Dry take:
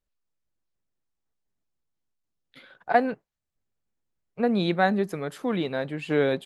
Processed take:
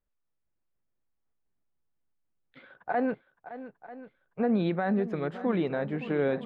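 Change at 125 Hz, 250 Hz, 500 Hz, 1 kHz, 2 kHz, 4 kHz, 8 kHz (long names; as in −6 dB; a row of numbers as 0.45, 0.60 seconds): −2.0 dB, −1.5 dB, −3.5 dB, −7.0 dB, −7.0 dB, −11.5 dB, can't be measured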